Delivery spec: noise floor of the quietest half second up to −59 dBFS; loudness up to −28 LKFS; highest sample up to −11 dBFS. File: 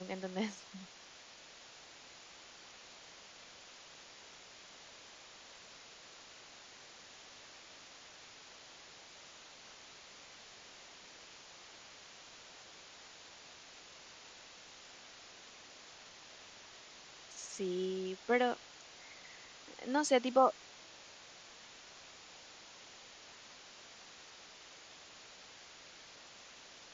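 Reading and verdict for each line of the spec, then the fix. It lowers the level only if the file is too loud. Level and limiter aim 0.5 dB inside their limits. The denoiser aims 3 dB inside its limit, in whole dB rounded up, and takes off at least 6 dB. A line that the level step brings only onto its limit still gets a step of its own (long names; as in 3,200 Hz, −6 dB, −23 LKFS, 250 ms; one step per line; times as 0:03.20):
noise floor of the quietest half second −56 dBFS: out of spec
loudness −43.5 LKFS: in spec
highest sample −15.5 dBFS: in spec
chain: broadband denoise 6 dB, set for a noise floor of −56 dBFS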